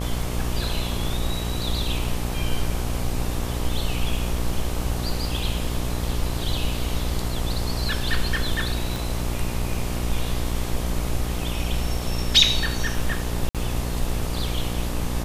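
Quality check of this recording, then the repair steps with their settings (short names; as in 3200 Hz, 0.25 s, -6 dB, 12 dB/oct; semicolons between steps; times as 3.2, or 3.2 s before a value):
buzz 60 Hz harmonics 21 -28 dBFS
8.96 pop
13.49–13.55 gap 57 ms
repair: de-click; de-hum 60 Hz, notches 21; interpolate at 13.49, 57 ms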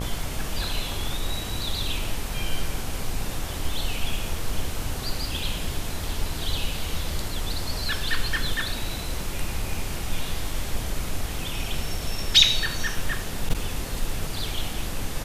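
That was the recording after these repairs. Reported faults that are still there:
8.96 pop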